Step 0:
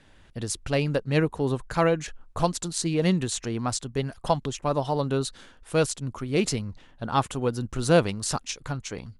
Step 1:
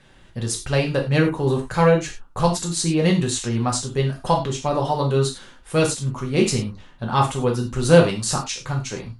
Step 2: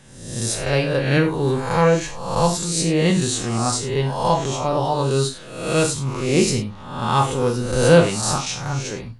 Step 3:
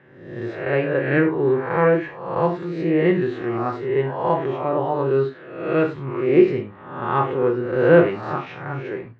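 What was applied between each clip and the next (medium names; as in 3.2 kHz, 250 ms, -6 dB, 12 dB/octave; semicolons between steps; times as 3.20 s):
gated-style reverb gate 130 ms falling, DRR -0.5 dB; trim +2 dB
reverse spectral sustain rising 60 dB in 0.82 s; trim -1 dB
cabinet simulation 160–2200 Hz, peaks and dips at 220 Hz -8 dB, 360 Hz +9 dB, 880 Hz -3 dB, 1.8 kHz +5 dB; trim -1 dB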